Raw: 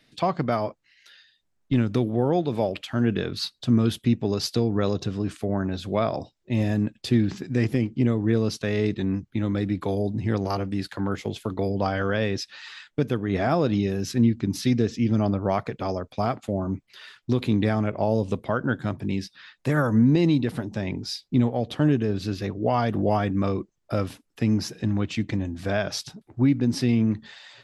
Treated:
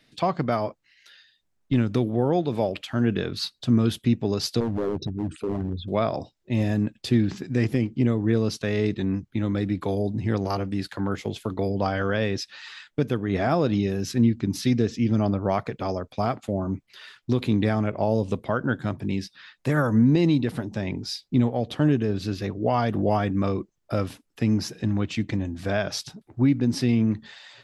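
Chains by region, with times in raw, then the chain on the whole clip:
4.6–5.88 formant sharpening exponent 3 + hard clip -22 dBFS + doubler 13 ms -11.5 dB
whole clip: dry

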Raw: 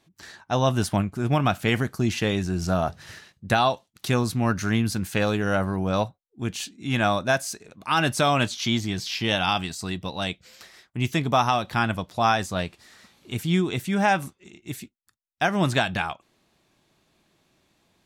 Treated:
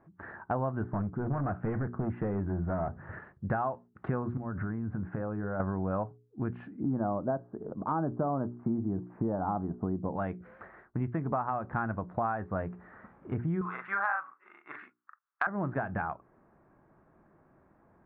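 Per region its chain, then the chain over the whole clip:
0.83–3.13 hard clip -23 dBFS + tape spacing loss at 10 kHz 21 dB
4.37–5.6 bell 4700 Hz -14 dB 1.7 oct + compressor 16:1, threshold -31 dBFS
6.8–10.16 LPF 1100 Hz 24 dB/oct + bell 290 Hz +7 dB 2.1 oct
13.61–15.47 resonant high-pass 1200 Hz, resonance Q 3.9 + high shelf 3000 Hz +11 dB + doubler 40 ms -3.5 dB
whole clip: steep low-pass 1600 Hz 36 dB/oct; notches 60/120/180/240/300/360/420 Hz; compressor 5:1, threshold -35 dBFS; gain +5 dB

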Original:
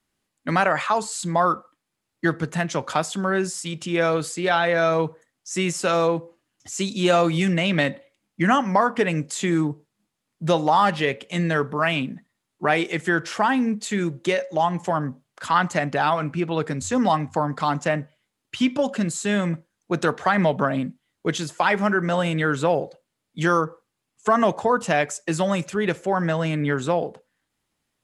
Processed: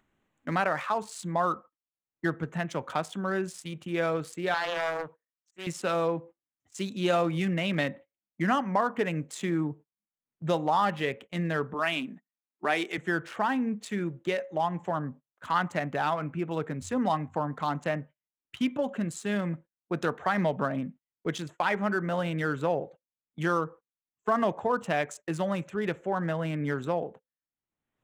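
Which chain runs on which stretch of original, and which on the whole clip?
4.54–5.67 low shelf 410 Hz -10.5 dB + auto swell 0.177 s + Doppler distortion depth 0.5 ms
11.74–12.98 HPF 200 Hz 24 dB/oct + high shelf 5000 Hz +10.5 dB + notch 510 Hz, Q 7.5
whole clip: Wiener smoothing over 9 samples; gate -38 dBFS, range -21 dB; upward compressor, threshold -42 dBFS; gain -7 dB

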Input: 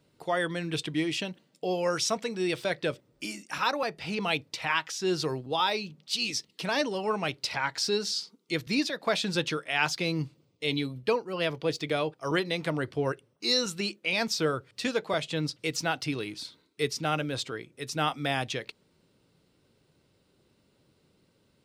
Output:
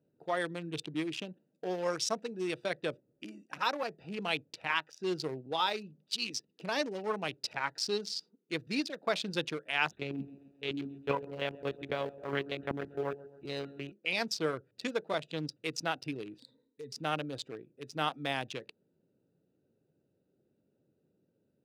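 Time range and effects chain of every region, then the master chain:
9.91–13.92 monotone LPC vocoder at 8 kHz 140 Hz + air absorption 97 m + lo-fi delay 0.133 s, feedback 55%, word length 8-bit, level -13 dB
16.38–16.92 self-modulated delay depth 0.056 ms + ripple EQ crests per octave 1, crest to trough 16 dB + compressor, threshold -33 dBFS
whole clip: Wiener smoothing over 41 samples; HPF 110 Hz; low shelf 230 Hz -6.5 dB; gain -2.5 dB

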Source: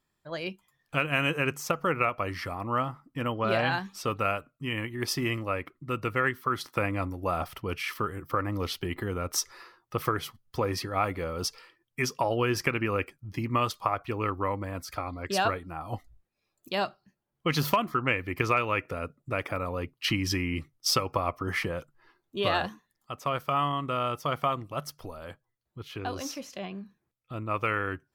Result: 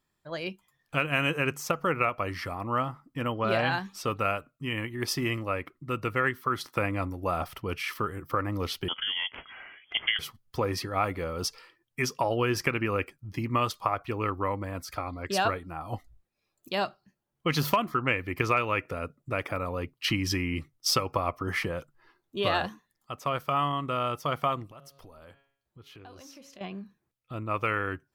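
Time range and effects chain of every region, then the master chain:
8.88–10.19 switching dead time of 0.053 ms + inverted band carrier 3300 Hz + upward compressor, threshold -38 dBFS
24.71–26.61 de-hum 138.2 Hz, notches 34 + compressor 3:1, threshold -50 dBFS
whole clip: dry

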